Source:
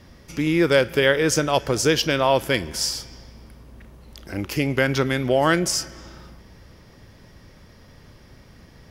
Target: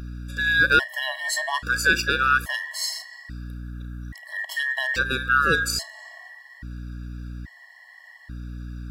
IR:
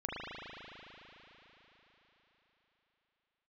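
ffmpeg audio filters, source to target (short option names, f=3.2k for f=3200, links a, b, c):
-af "afftfilt=real='real(if(between(b,1,1012),(2*floor((b-1)/92)+1)*92-b,b),0)':imag='imag(if(between(b,1,1012),(2*floor((b-1)/92)+1)*92-b,b),0)*if(between(b,1,1012),-1,1)':win_size=2048:overlap=0.75,aeval=exprs='val(0)+0.0224*(sin(2*PI*60*n/s)+sin(2*PI*2*60*n/s)/2+sin(2*PI*3*60*n/s)/3+sin(2*PI*4*60*n/s)/4+sin(2*PI*5*60*n/s)/5)':c=same,afftfilt=real='re*gt(sin(2*PI*0.6*pts/sr)*(1-2*mod(floor(b*sr/1024/560),2)),0)':imag='im*gt(sin(2*PI*0.6*pts/sr)*(1-2*mod(floor(b*sr/1024/560),2)),0)':win_size=1024:overlap=0.75"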